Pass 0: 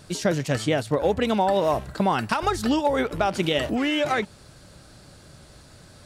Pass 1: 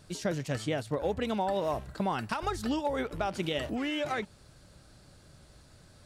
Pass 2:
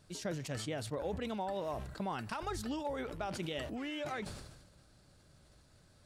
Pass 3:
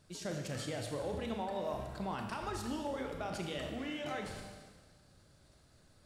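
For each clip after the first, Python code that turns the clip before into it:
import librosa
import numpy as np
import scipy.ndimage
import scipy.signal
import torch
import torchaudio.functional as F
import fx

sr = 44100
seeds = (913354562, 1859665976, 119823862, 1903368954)

y1 = fx.low_shelf(x, sr, hz=73.0, db=6.0)
y1 = y1 * librosa.db_to_amplitude(-9.0)
y2 = fx.sustainer(y1, sr, db_per_s=47.0)
y2 = y2 * librosa.db_to_amplitude(-8.0)
y3 = fx.rev_schroeder(y2, sr, rt60_s=1.4, comb_ms=27, drr_db=3.0)
y3 = y3 * librosa.db_to_amplitude(-2.0)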